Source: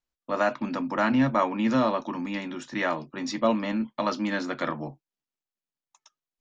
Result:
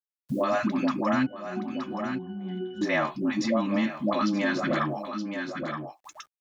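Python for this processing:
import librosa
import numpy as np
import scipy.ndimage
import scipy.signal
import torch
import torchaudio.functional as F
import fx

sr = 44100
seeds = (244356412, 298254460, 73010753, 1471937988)

p1 = fx.over_compress(x, sr, threshold_db=-27.0, ratio=-0.5)
p2 = x + (p1 * 10.0 ** (-1.0 / 20.0))
p3 = fx.notch_comb(p2, sr, f0_hz=470.0)
p4 = fx.dispersion(p3, sr, late='highs', ms=146.0, hz=480.0)
p5 = fx.quant_dither(p4, sr, seeds[0], bits=12, dither='none')
p6 = fx.octave_resonator(p5, sr, note='F#', decay_s=0.46, at=(1.25, 2.81), fade=0.02)
p7 = p6 + fx.echo_single(p6, sr, ms=922, db=-15.0, dry=0)
p8 = fx.band_squash(p7, sr, depth_pct=70)
y = p8 * 10.0 ** (-2.5 / 20.0)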